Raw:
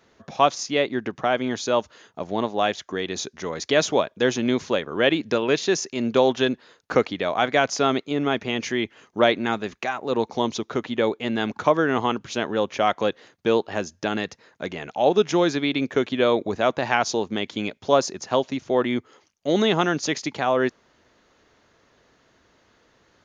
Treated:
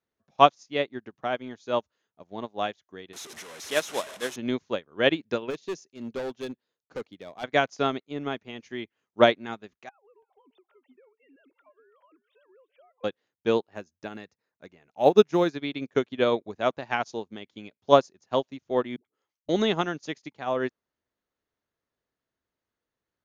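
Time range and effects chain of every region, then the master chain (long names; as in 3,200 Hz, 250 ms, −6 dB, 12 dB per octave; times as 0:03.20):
0:03.13–0:04.36: linear delta modulator 64 kbit/s, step −18 dBFS + high-pass filter 550 Hz 6 dB per octave + notch filter 4,600 Hz
0:05.50–0:07.44: high-pass filter 53 Hz + parametric band 1,400 Hz −5.5 dB 1.7 octaves + hard clipping −19.5 dBFS
0:09.89–0:13.04: three sine waves on the formant tracks + downward compressor 8 to 1, threshold −31 dBFS + single-tap delay 334 ms −18.5 dB
0:13.68–0:15.56: parametric band 3,200 Hz −7.5 dB 0.2 octaves + floating-point word with a short mantissa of 6 bits
0:18.96–0:19.49: downward compressor 12 to 1, threshold −37 dBFS + all-pass dispersion highs, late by 87 ms, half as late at 360 Hz
whole clip: low-shelf EQ 180 Hz +3 dB; expander for the loud parts 2.5 to 1, over −34 dBFS; level +3 dB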